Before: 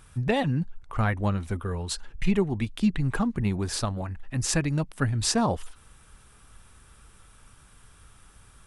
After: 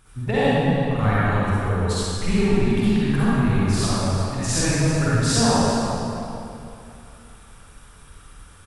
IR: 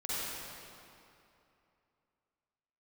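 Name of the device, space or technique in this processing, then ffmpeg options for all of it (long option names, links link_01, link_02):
cave: -filter_complex "[0:a]aecho=1:1:346:0.2[link_01];[1:a]atrim=start_sample=2205[link_02];[link_01][link_02]afir=irnorm=-1:irlink=0,volume=2dB"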